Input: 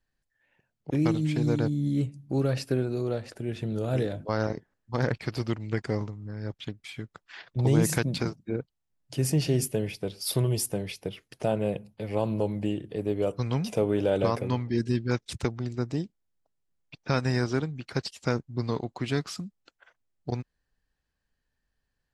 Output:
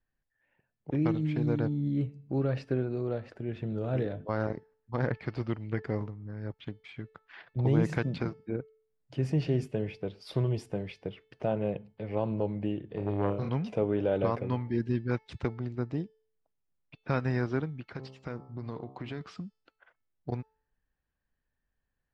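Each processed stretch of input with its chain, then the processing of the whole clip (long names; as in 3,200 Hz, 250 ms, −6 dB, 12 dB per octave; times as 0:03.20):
0:12.88–0:13.49: flutter between parallel walls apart 5.1 metres, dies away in 0.51 s + saturating transformer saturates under 640 Hz
0:17.92–0:19.21: hum removal 66.02 Hz, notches 20 + downward compressor 4 to 1, threshold −31 dBFS
whole clip: low-pass filter 2,500 Hz 12 dB per octave; hum removal 437.9 Hz, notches 21; level −3 dB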